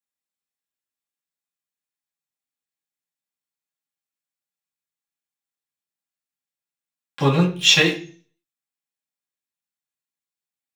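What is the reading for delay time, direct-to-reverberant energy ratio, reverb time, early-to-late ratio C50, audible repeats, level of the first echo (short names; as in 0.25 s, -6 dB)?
none, -3.5 dB, 0.40 s, 10.5 dB, none, none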